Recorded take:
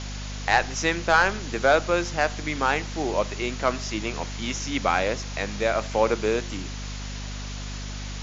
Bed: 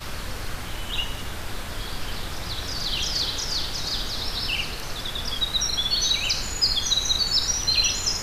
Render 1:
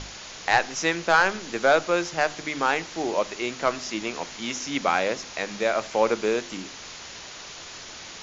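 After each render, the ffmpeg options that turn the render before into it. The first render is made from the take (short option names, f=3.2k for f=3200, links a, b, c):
-af "bandreject=f=50:t=h:w=6,bandreject=f=100:t=h:w=6,bandreject=f=150:t=h:w=6,bandreject=f=200:t=h:w=6,bandreject=f=250:t=h:w=6,bandreject=f=300:t=h:w=6"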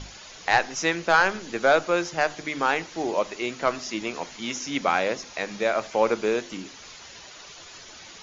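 -af "afftdn=nr=8:nf=-41"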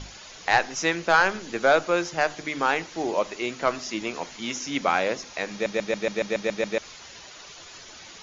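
-filter_complex "[0:a]asplit=10[a][b][c][d][e][f][g][h][i][j];[a]atrim=end=5.662[k];[b]atrim=start=5.518:end=5.662[l];[c]atrim=start=5.518:end=5.662[m];[d]atrim=start=5.518:end=5.662[n];[e]atrim=start=5.518:end=5.662[o];[f]atrim=start=5.518:end=5.662[p];[g]atrim=start=5.518:end=5.662[q];[h]atrim=start=5.518:end=5.662[r];[i]atrim=start=5.518:end=5.662[s];[j]atrim=start=6.778[t];[k][l]acrossfade=d=0.004:c1=hsin:c2=hsin[u];[u][m]acrossfade=d=0.004:c1=hsin:c2=hsin[v];[v][n]acrossfade=d=0.004:c1=hsin:c2=hsin[w];[w][o]acrossfade=d=0.004:c1=hsin:c2=hsin[x];[x][p]acrossfade=d=0.004:c1=hsin:c2=hsin[y];[y][q]acrossfade=d=0.004:c1=hsin:c2=hsin[z];[z][r]acrossfade=d=0.004:c1=hsin:c2=hsin[aa];[aa][s]acrossfade=d=0.004:c1=hsin:c2=hsin[ab];[ab][t]acrossfade=d=0.004:c1=hsin:c2=hsin"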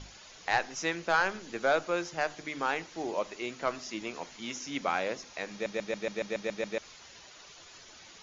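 -af "volume=-7.5dB"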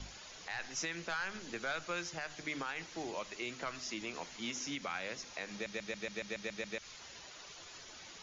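-filter_complex "[0:a]acrossover=split=170|1300[a][b][c];[b]acompressor=threshold=-41dB:ratio=6[d];[a][d][c]amix=inputs=3:normalize=0,alimiter=level_in=4dB:limit=-24dB:level=0:latency=1:release=84,volume=-4dB"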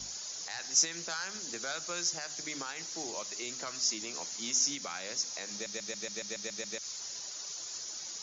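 -af "highpass=f=150:p=1,highshelf=f=4k:t=q:w=1.5:g=12.5"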